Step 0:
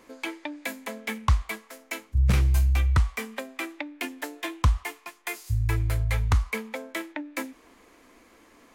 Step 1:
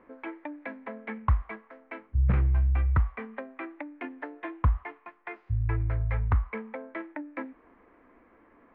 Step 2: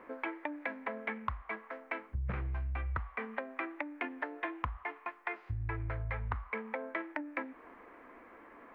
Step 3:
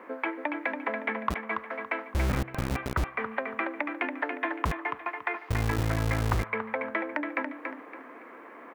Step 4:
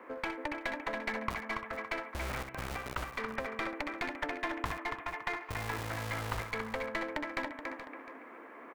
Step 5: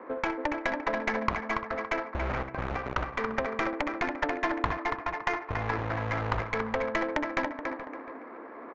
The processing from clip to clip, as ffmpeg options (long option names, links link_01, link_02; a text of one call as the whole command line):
ffmpeg -i in.wav -af "lowpass=frequency=1900:width=0.5412,lowpass=frequency=1900:width=1.3066,volume=-2.5dB" out.wav
ffmpeg -i in.wav -af "lowshelf=frequency=290:gain=-12,acompressor=threshold=-41dB:ratio=8,volume=7.5dB" out.wav
ffmpeg -i in.wav -filter_complex "[0:a]aecho=1:1:282|564|846|1128:0.501|0.155|0.0482|0.0149,acrossover=split=160|700[link_01][link_02][link_03];[link_01]acrusher=bits=5:mix=0:aa=0.000001[link_04];[link_04][link_02][link_03]amix=inputs=3:normalize=0,volume=7dB" out.wav
ffmpeg -i in.wav -filter_complex "[0:a]acrossover=split=500|1400[link_01][link_02][link_03];[link_01]acompressor=threshold=-36dB:ratio=6[link_04];[link_04][link_02][link_03]amix=inputs=3:normalize=0,aeval=exprs='clip(val(0),-1,0.0299)':channel_layout=same,aecho=1:1:63|426:0.376|0.266,volume=-4dB" out.wav
ffmpeg -i in.wav -af "bass=frequency=250:gain=-2,treble=frequency=4000:gain=-5,adynamicsmooth=sensitivity=2.5:basefreq=1500,aresample=16000,aresample=44100,volume=8.5dB" out.wav